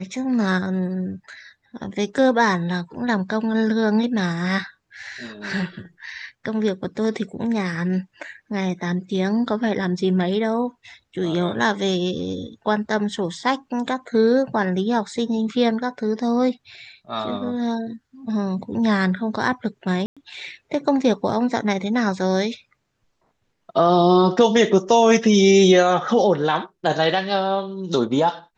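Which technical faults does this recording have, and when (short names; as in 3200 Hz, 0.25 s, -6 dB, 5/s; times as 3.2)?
20.06–20.17 gap 0.106 s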